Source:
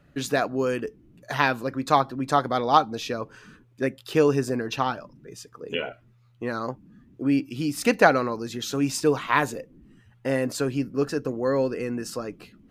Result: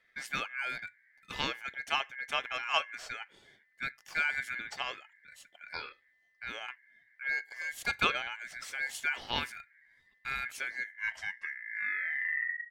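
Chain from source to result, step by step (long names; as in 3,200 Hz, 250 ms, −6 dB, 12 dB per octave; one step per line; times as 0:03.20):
turntable brake at the end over 2.13 s
ring modulation 1,900 Hz
level −9 dB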